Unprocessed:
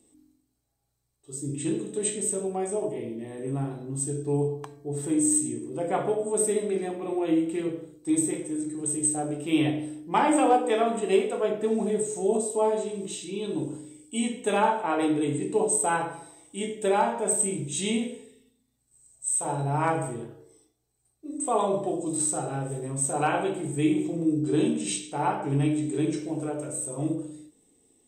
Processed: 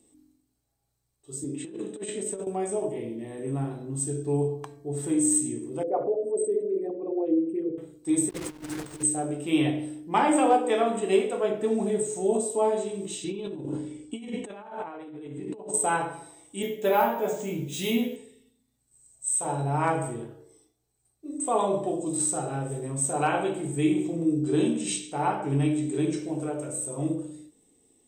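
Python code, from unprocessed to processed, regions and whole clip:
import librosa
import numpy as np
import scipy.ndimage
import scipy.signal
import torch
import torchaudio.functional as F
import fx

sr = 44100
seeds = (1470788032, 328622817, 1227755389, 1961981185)

y = fx.chain(x, sr, fx.highpass(hz=230.0, slope=12),
    fx.high_shelf(hz=4800.0, db=-10.5),
    fx.over_compress(threshold_db=-33.0, ratio=-0.5), at=(1.44, 2.47))
y = fx.chain(y, sr, fx.envelope_sharpen(power=2.0),
    fx.lowpass(hz=2700.0, slope=6), at=(5.83, 7.78))
y = fx.chain(y, sr, fx.delta_mod(bps=64000, step_db=-30.5),
    fx.over_compress(threshold_db=-34.0, ratio=-0.5),
    fx.backlash(play_db=-33.5), at=(8.29, 9.03))
y = fx.chain(y, sr, fx.lowpass(hz=7800.0, slope=12),
    fx.high_shelf(hz=4000.0, db=-11.0),
    fx.over_compress(threshold_db=-37.0, ratio=-1.0), at=(13.24, 15.74))
y = fx.chain(y, sr, fx.highpass(hz=54.0, slope=12),
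    fx.doubler(ms=12.0, db=-4.0),
    fx.resample_bad(factor=3, down='filtered', up='hold'), at=(16.62, 18.16))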